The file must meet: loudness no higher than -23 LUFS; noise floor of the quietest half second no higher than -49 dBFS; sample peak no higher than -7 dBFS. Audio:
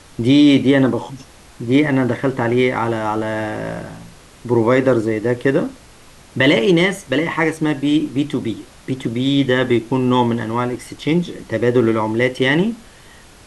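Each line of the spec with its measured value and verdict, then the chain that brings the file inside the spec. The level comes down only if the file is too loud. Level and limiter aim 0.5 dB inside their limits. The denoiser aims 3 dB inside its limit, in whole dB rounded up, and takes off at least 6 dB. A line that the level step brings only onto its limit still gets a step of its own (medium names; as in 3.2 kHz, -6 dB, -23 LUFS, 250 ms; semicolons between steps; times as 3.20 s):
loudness -17.5 LUFS: fail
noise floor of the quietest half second -44 dBFS: fail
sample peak -3.5 dBFS: fail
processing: trim -6 dB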